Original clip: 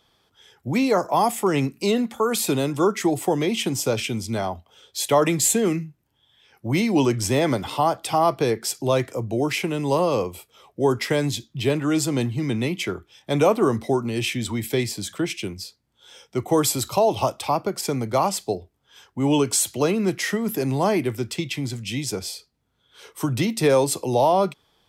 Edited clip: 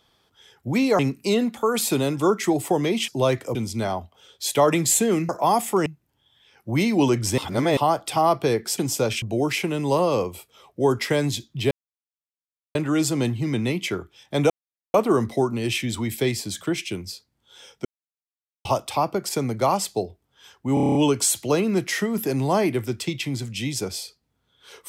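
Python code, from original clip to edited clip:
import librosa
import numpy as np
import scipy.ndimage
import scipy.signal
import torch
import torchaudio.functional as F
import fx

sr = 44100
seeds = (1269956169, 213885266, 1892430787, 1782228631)

y = fx.edit(x, sr, fx.move(start_s=0.99, length_s=0.57, to_s=5.83),
    fx.swap(start_s=3.65, length_s=0.44, other_s=8.75, other_length_s=0.47),
    fx.reverse_span(start_s=7.35, length_s=0.39),
    fx.insert_silence(at_s=11.71, length_s=1.04),
    fx.insert_silence(at_s=13.46, length_s=0.44),
    fx.silence(start_s=16.37, length_s=0.8),
    fx.stutter(start_s=19.26, slice_s=0.03, count=8), tone=tone)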